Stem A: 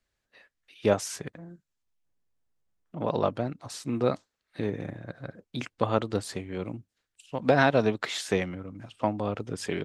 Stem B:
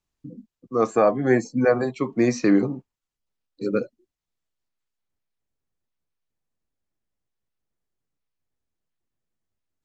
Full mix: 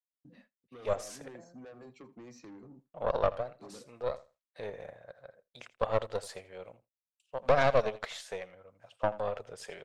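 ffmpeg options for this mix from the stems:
ffmpeg -i stem1.wav -i stem2.wav -filter_complex "[0:a]lowshelf=frequency=400:width_type=q:width=3:gain=-10.5,tremolo=f=0.65:d=0.56,aeval=exprs='(tanh(6.31*val(0)+0.8)-tanh(0.8))/6.31':channel_layout=same,volume=-1.5dB,asplit=2[link_01][link_02];[link_02]volume=-17.5dB[link_03];[1:a]acompressor=threshold=-25dB:ratio=6,asoftclip=type=tanh:threshold=-28dB,volume=-17dB,asplit=2[link_04][link_05];[link_05]volume=-20dB[link_06];[link_03][link_06]amix=inputs=2:normalize=0,aecho=0:1:82|164|246:1|0.17|0.0289[link_07];[link_01][link_04][link_07]amix=inputs=3:normalize=0,agate=range=-33dB:threshold=-57dB:ratio=3:detection=peak" out.wav

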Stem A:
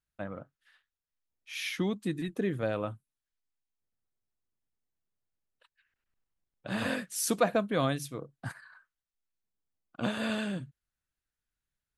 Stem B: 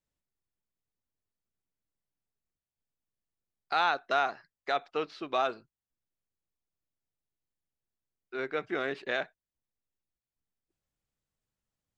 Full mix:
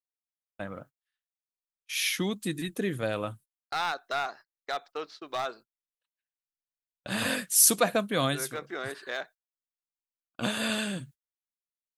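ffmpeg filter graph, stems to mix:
ffmpeg -i stem1.wav -i stem2.wav -filter_complex "[0:a]highshelf=frequency=8500:gain=8.5,adelay=400,volume=0dB[link_01];[1:a]highpass=frequency=300:poles=1,equalizer=frequency=2600:width=1.6:gain=-8.5,aeval=exprs='clip(val(0),-1,0.0562)':channel_layout=same,volume=-3dB,asplit=2[link_02][link_03];[link_03]apad=whole_len=545578[link_04];[link_01][link_04]sidechaincompress=threshold=-38dB:ratio=8:attack=6.4:release=272[link_05];[link_05][link_02]amix=inputs=2:normalize=0,agate=range=-29dB:threshold=-50dB:ratio=16:detection=peak,highshelf=frequency=2100:gain=9" out.wav

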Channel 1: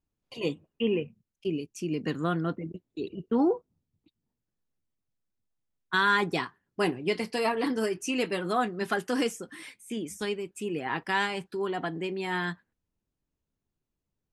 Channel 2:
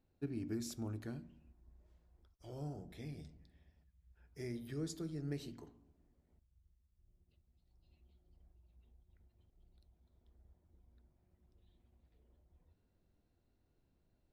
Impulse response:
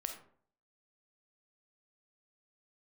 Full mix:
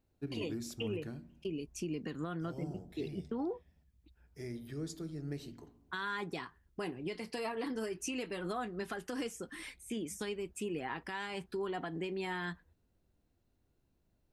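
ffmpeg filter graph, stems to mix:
-filter_complex "[0:a]acompressor=threshold=-32dB:ratio=6,volume=-2dB[link_01];[1:a]volume=0.5dB[link_02];[link_01][link_02]amix=inputs=2:normalize=0,alimiter=level_in=4dB:limit=-24dB:level=0:latency=1:release=112,volume=-4dB"

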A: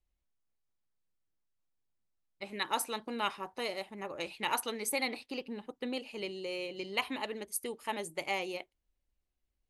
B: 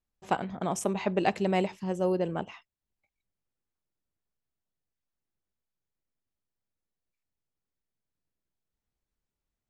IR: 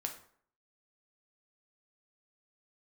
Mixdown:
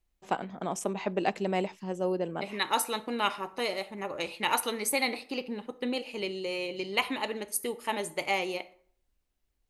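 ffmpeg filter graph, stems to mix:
-filter_complex "[0:a]volume=1dB,asplit=2[link_01][link_02];[link_02]volume=-3.5dB[link_03];[1:a]highpass=180,volume=-2dB[link_04];[2:a]atrim=start_sample=2205[link_05];[link_03][link_05]afir=irnorm=-1:irlink=0[link_06];[link_01][link_04][link_06]amix=inputs=3:normalize=0"

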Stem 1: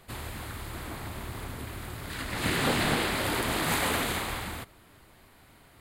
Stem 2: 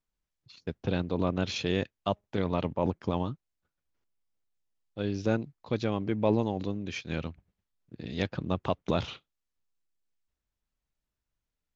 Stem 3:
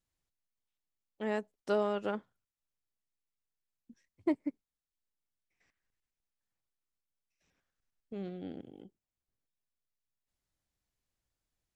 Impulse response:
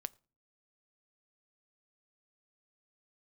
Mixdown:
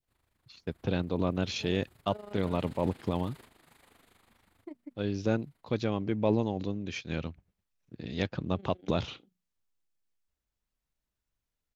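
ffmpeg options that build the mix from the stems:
-filter_complex "[0:a]acompressor=threshold=-44dB:ratio=1.5,volume=-15dB,afade=type=in:start_time=1.26:duration=0.37:silence=0.421697[link_01];[1:a]volume=-0.5dB,asplit=2[link_02][link_03];[2:a]bandreject=frequency=60:width_type=h:width=6,bandreject=frequency=120:width_type=h:width=6,bandreject=frequency=180:width_type=h:width=6,bandreject=frequency=240:width_type=h:width=6,adelay=400,volume=-7.5dB[link_04];[link_03]apad=whole_len=255987[link_05];[link_01][link_05]sidechaingate=range=-9dB:threshold=-52dB:ratio=16:detection=peak[link_06];[link_06][link_04]amix=inputs=2:normalize=0,tremolo=f=25:d=0.75,alimiter=level_in=10dB:limit=-24dB:level=0:latency=1:release=224,volume=-10dB,volume=0dB[link_07];[link_02][link_07]amix=inputs=2:normalize=0,adynamicequalizer=threshold=0.00562:dfrequency=1200:dqfactor=0.76:tfrequency=1200:tqfactor=0.76:attack=5:release=100:ratio=0.375:range=1.5:mode=cutabove:tftype=bell"

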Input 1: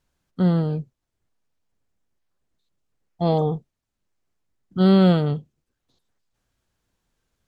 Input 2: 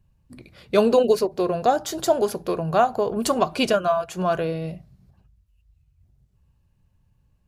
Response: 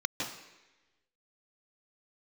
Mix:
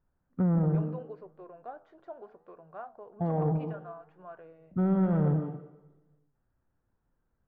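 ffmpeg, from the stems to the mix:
-filter_complex "[0:a]alimiter=limit=-16dB:level=0:latency=1,volume=1.5dB,asplit=2[link_01][link_02];[link_02]volume=-12dB[link_03];[1:a]aemphasis=mode=production:type=riaa,volume=-18dB[link_04];[2:a]atrim=start_sample=2205[link_05];[link_03][link_05]afir=irnorm=-1:irlink=0[link_06];[link_01][link_04][link_06]amix=inputs=3:normalize=0,lowpass=frequency=1700:width=0.5412,lowpass=frequency=1700:width=1.3066,asoftclip=type=tanh:threshold=-13.5dB,flanger=delay=5.9:depth=9:regen=-89:speed=0.7:shape=triangular"

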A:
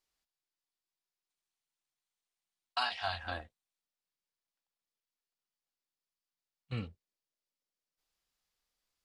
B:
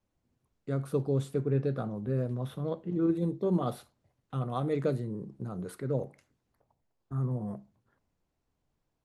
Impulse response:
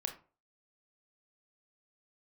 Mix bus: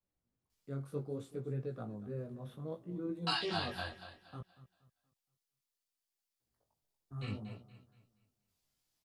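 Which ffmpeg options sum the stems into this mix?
-filter_complex "[0:a]highshelf=frequency=4100:gain=10,flanger=delay=9.5:depth=1.7:regen=43:speed=0.6:shape=triangular,adelay=500,volume=2.5dB,asplit=2[link_01][link_02];[link_02]volume=-11.5dB[link_03];[1:a]volume=-8dB,asplit=3[link_04][link_05][link_06];[link_04]atrim=end=4.41,asetpts=PTS-STARTPTS,afade=type=out:start_time=4.406:duration=0.004:curve=hsin[link_07];[link_05]atrim=start=4.41:end=6.4,asetpts=PTS-STARTPTS,volume=0[link_08];[link_06]atrim=start=6.4,asetpts=PTS-STARTPTS,afade=type=in:duration=0.004:curve=hsin[link_09];[link_07][link_08][link_09]concat=n=3:v=0:a=1,asplit=2[link_10][link_11];[link_11]volume=-16dB[link_12];[link_03][link_12]amix=inputs=2:normalize=0,aecho=0:1:236|472|708|944|1180:1|0.35|0.122|0.0429|0.015[link_13];[link_01][link_10][link_13]amix=inputs=3:normalize=0,flanger=delay=16:depth=5.3:speed=0.64"

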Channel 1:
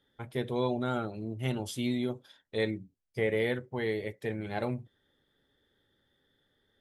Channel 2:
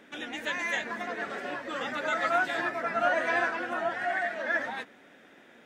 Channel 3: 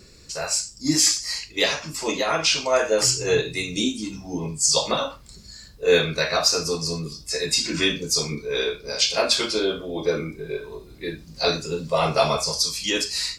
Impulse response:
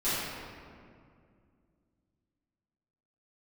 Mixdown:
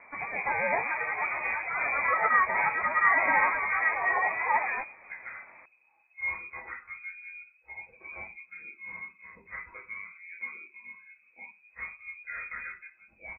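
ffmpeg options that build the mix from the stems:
-filter_complex "[0:a]volume=-4.5dB[link_01];[1:a]volume=3dB[link_02];[2:a]aecho=1:1:6.7:0.71,adelay=350,volume=-19dB[link_03];[link_01][link_02][link_03]amix=inputs=3:normalize=0,lowpass=frequency=2200:width_type=q:width=0.5098,lowpass=frequency=2200:width_type=q:width=0.6013,lowpass=frequency=2200:width_type=q:width=0.9,lowpass=frequency=2200:width_type=q:width=2.563,afreqshift=-2600"

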